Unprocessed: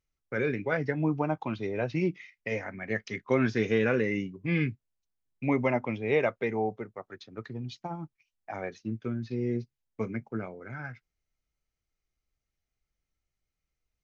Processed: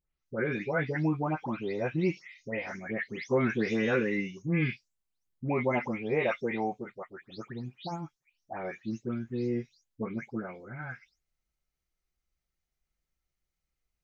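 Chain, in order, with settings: delay that grows with frequency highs late, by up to 253 ms

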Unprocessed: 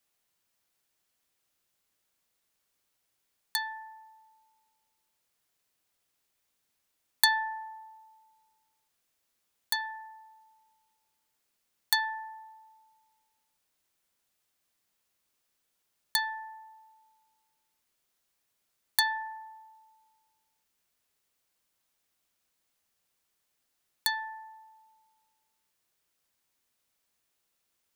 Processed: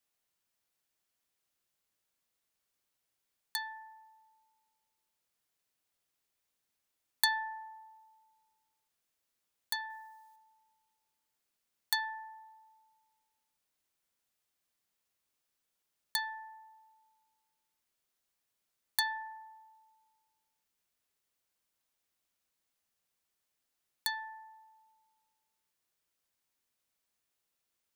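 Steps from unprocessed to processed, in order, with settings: 9.90–10.36 s: treble shelf 3.3 kHz +9.5 dB; trim -5.5 dB

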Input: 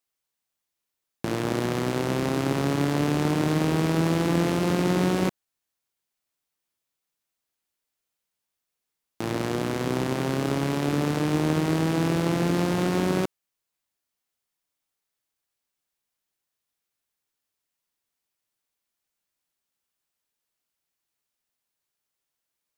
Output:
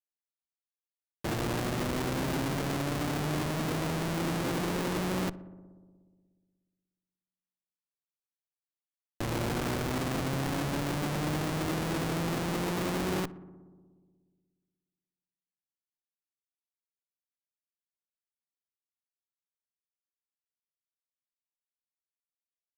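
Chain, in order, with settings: Schmitt trigger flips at -33 dBFS; bass shelf 140 Hz -8 dB; filtered feedback delay 60 ms, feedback 82%, low-pass 1.9 kHz, level -19 dB

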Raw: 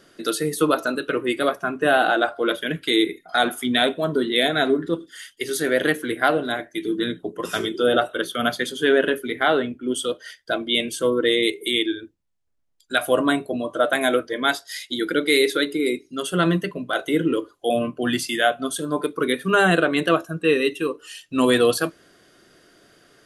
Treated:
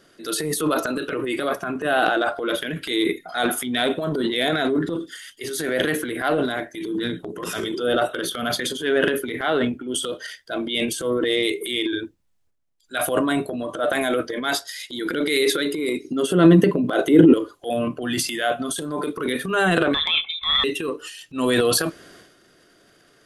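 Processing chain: 19.94–20.64 s: frequency inversion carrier 3.8 kHz; transient shaper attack -6 dB, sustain +10 dB; 16.04–17.34 s: peaking EQ 300 Hz +12 dB 2.2 oct; trim -2 dB

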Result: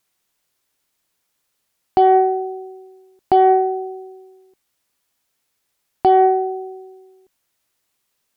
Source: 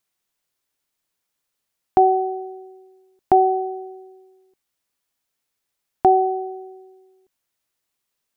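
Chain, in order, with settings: Chebyshev shaper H 7 -30 dB, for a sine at -5 dBFS; peak limiter -15 dBFS, peak gain reduction 9.5 dB; trim +9 dB

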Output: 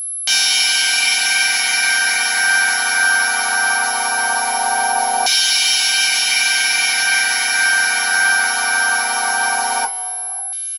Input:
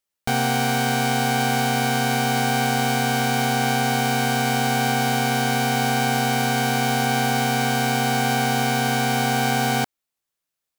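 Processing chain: peaking EQ 5.4 kHz +14 dB 0.56 oct; feedback delay 542 ms, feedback 41%, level -22 dB; two-slope reverb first 0.26 s, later 2.1 s, from -18 dB, DRR -1.5 dB; reverb removal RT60 1.6 s; tone controls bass -14 dB, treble +9 dB; compression 3:1, threshold -24 dBFS, peak gain reduction 10 dB; LFO band-pass saw down 0.19 Hz 820–3300 Hz; whistle 11 kHz -41 dBFS; loudness maximiser +20 dB; trim -1 dB

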